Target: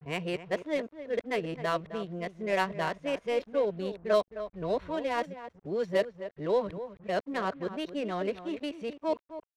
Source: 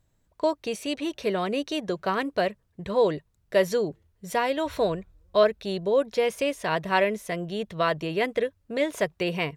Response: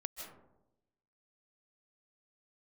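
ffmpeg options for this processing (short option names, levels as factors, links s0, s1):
-filter_complex "[0:a]areverse,asplit=2[s0][s1];[s1]adelay=262.4,volume=0.251,highshelf=f=4000:g=-5.9[s2];[s0][s2]amix=inputs=2:normalize=0,acrusher=bits=7:mix=0:aa=0.5,adynamicsmooth=sensitivity=3:basefreq=1800,volume=0.531"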